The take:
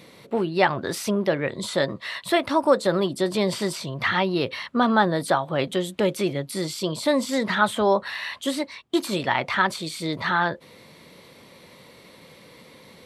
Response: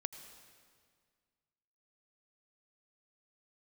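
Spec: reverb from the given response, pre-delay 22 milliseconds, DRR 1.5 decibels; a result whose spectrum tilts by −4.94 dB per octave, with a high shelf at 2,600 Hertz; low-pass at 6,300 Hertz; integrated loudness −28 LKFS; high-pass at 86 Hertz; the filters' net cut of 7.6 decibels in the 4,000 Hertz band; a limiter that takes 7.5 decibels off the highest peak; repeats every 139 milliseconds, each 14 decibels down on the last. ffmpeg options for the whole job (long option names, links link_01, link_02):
-filter_complex "[0:a]highpass=86,lowpass=6300,highshelf=frequency=2600:gain=-6.5,equalizer=frequency=4000:width_type=o:gain=-3.5,alimiter=limit=-13.5dB:level=0:latency=1,aecho=1:1:139|278:0.2|0.0399,asplit=2[link_01][link_02];[1:a]atrim=start_sample=2205,adelay=22[link_03];[link_02][link_03]afir=irnorm=-1:irlink=0,volume=0dB[link_04];[link_01][link_04]amix=inputs=2:normalize=0,volume=-4dB"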